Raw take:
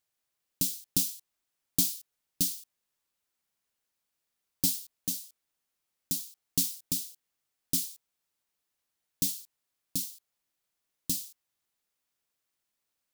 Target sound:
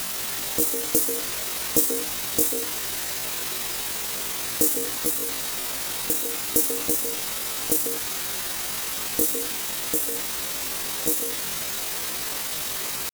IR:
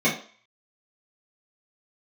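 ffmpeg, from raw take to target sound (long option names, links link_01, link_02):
-filter_complex "[0:a]aeval=exprs='val(0)+0.5*0.0447*sgn(val(0))':channel_layout=same,bandreject=frequency=161.7:width_type=h:width=4,bandreject=frequency=323.4:width_type=h:width=4,bandreject=frequency=485.1:width_type=h:width=4,bandreject=frequency=646.8:width_type=h:width=4,bandreject=frequency=808.5:width_type=h:width=4,bandreject=frequency=970.2:width_type=h:width=4,bandreject=frequency=1131.9:width_type=h:width=4,bandreject=frequency=1293.6:width_type=h:width=4,bandreject=frequency=1455.3:width_type=h:width=4,bandreject=frequency=1617:width_type=h:width=4,asplit=2[link_01][link_02];[1:a]atrim=start_sample=2205,highshelf=frequency=11000:gain=-7.5,adelay=142[link_03];[link_02][link_03]afir=irnorm=-1:irlink=0,volume=-25dB[link_04];[link_01][link_04]amix=inputs=2:normalize=0,asetrate=76340,aresample=44100,atempo=0.577676,volume=7.5dB"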